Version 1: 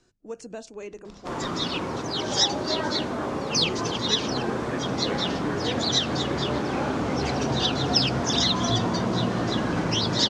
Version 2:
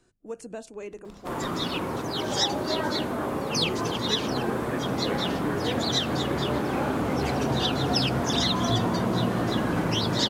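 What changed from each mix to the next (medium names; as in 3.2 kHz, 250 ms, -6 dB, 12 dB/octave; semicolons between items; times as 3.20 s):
master: remove resonant low-pass 5.9 kHz, resonance Q 1.8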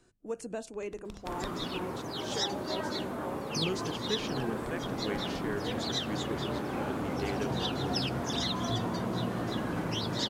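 first sound +4.5 dB; second sound -7.5 dB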